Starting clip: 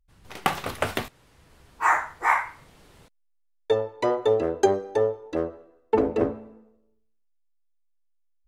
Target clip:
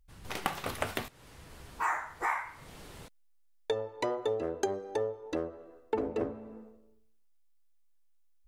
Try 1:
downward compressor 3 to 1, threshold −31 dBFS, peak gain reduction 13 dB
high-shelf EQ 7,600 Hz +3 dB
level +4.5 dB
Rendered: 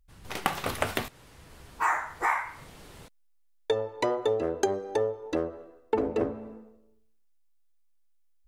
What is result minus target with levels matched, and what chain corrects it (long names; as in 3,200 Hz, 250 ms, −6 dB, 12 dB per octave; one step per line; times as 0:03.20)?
downward compressor: peak gain reduction −5 dB
downward compressor 3 to 1, threshold −38.5 dBFS, peak gain reduction 18 dB
high-shelf EQ 7,600 Hz +3 dB
level +4.5 dB